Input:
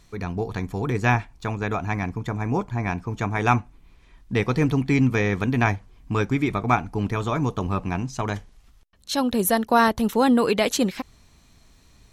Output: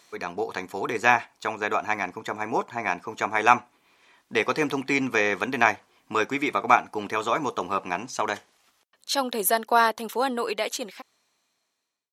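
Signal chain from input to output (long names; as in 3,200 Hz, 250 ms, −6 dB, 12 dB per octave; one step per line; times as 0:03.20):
fade-out on the ending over 3.82 s
high-pass filter 470 Hz 12 dB per octave
level +3.5 dB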